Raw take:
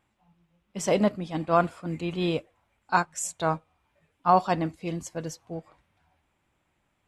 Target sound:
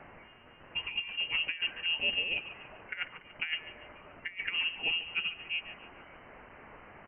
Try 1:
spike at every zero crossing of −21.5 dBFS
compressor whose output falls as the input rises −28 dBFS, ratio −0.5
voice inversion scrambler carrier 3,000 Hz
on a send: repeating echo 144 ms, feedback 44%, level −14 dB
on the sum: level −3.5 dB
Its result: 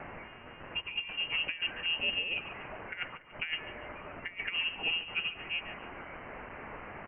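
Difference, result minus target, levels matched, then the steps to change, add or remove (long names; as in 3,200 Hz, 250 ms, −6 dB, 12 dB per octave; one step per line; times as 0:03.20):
spike at every zero crossing: distortion +8 dB
change: spike at every zero crossing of −29.5 dBFS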